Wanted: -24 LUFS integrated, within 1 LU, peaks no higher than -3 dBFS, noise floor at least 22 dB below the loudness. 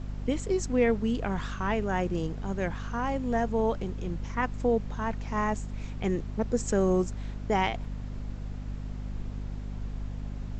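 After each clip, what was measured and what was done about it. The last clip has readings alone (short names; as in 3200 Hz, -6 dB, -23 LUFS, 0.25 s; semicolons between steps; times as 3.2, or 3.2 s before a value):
hum 50 Hz; harmonics up to 250 Hz; hum level -33 dBFS; noise floor -38 dBFS; noise floor target -53 dBFS; loudness -30.5 LUFS; peak -12.5 dBFS; loudness target -24.0 LUFS
-> notches 50/100/150/200/250 Hz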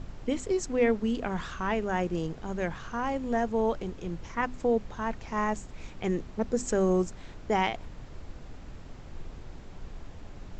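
hum none; noise floor -45 dBFS; noise floor target -53 dBFS
-> noise print and reduce 8 dB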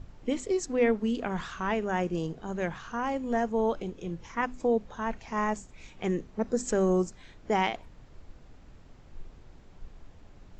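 noise floor -53 dBFS; loudness -30.5 LUFS; peak -13.0 dBFS; loudness target -24.0 LUFS
-> gain +6.5 dB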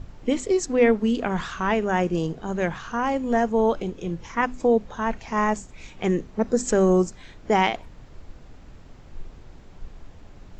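loudness -24.0 LUFS; peak -6.5 dBFS; noise floor -46 dBFS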